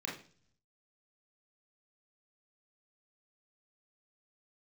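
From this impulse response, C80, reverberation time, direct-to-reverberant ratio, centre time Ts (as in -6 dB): 12.0 dB, 0.45 s, -3.0 dB, 32 ms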